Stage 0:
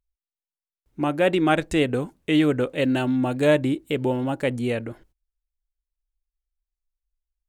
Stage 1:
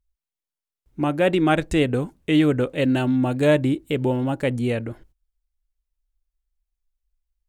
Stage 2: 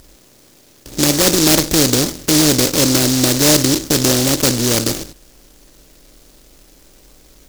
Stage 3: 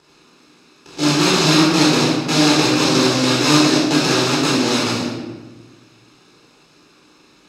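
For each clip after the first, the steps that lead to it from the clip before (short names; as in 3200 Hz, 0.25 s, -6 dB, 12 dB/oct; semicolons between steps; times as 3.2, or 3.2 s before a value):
low shelf 160 Hz +7 dB
per-bin compression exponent 0.4; in parallel at -4 dB: crossover distortion -33 dBFS; on the sum: noise-modulated delay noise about 5400 Hz, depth 0.32 ms; gain -2 dB
minimum comb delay 0.77 ms; BPF 270–4600 Hz; shoebox room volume 770 m³, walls mixed, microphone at 4.1 m; gain -4.5 dB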